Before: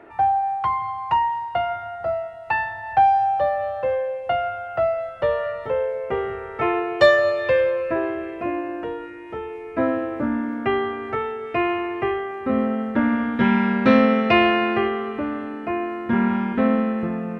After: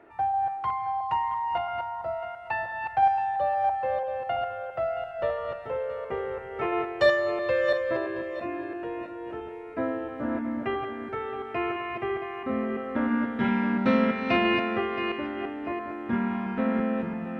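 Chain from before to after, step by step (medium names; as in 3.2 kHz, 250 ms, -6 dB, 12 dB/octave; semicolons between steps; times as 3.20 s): backward echo that repeats 336 ms, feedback 43%, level -5 dB; trim -8 dB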